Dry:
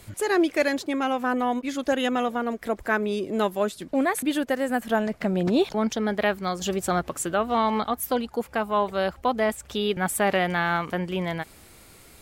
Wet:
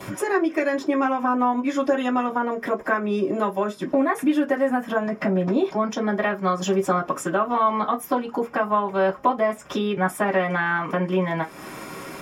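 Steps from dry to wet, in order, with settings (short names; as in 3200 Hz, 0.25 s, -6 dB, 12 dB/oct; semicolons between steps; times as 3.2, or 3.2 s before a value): compressor 5:1, threshold -39 dBFS, peak gain reduction 19.5 dB; reverb RT60 0.15 s, pre-delay 3 ms, DRR -11 dB; gain +5 dB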